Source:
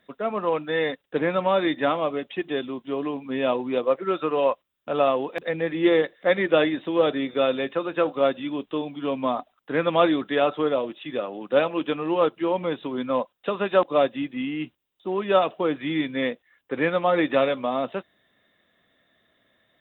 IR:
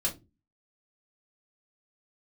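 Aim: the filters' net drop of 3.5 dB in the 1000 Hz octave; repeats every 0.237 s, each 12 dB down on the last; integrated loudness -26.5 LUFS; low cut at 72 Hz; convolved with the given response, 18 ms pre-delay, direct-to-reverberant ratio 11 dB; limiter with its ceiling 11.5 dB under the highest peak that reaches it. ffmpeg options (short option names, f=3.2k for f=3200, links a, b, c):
-filter_complex "[0:a]highpass=72,equalizer=f=1k:t=o:g=-5,alimiter=limit=-19dB:level=0:latency=1,aecho=1:1:237|474|711:0.251|0.0628|0.0157,asplit=2[a][b];[1:a]atrim=start_sample=2205,adelay=18[c];[b][c]afir=irnorm=-1:irlink=0,volume=-16dB[d];[a][d]amix=inputs=2:normalize=0,volume=2dB"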